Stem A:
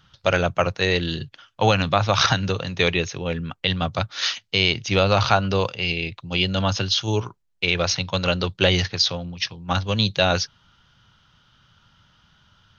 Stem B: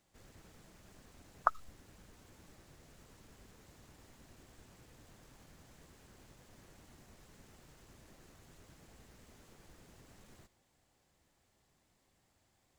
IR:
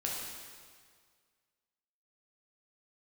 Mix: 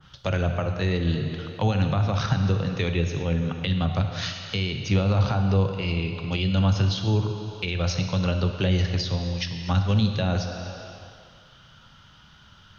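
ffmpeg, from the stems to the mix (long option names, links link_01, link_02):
-filter_complex "[0:a]alimiter=limit=-9dB:level=0:latency=1:release=214,adynamicequalizer=threshold=0.0126:dfrequency=1800:dqfactor=0.7:tfrequency=1800:tqfactor=0.7:attack=5:release=100:ratio=0.375:range=3.5:mode=cutabove:tftype=highshelf,volume=1.5dB,asplit=2[link_01][link_02];[link_02]volume=-5dB[link_03];[1:a]volume=-18dB[link_04];[2:a]atrim=start_sample=2205[link_05];[link_03][link_05]afir=irnorm=-1:irlink=0[link_06];[link_01][link_04][link_06]amix=inputs=3:normalize=0,acrossover=split=230[link_07][link_08];[link_08]acompressor=threshold=-37dB:ratio=2[link_09];[link_07][link_09]amix=inputs=2:normalize=0"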